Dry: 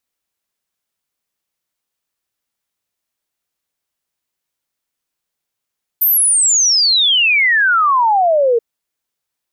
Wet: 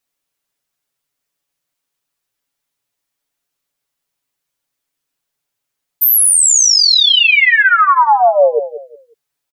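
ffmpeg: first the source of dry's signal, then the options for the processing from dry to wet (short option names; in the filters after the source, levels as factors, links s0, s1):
-f lavfi -i "aevalsrc='0.335*clip(min(t,2.58-t)/0.01,0,1)*sin(2*PI*14000*2.58/log(450/14000)*(exp(log(450/14000)*t/2.58)-1))':d=2.58:s=44100"
-filter_complex "[0:a]aecho=1:1:7.1:0.84,asplit=2[s0][s1];[s1]adelay=182,lowpass=f=3900:p=1,volume=0.251,asplit=2[s2][s3];[s3]adelay=182,lowpass=f=3900:p=1,volume=0.27,asplit=2[s4][s5];[s5]adelay=182,lowpass=f=3900:p=1,volume=0.27[s6];[s0][s2][s4][s6]amix=inputs=4:normalize=0"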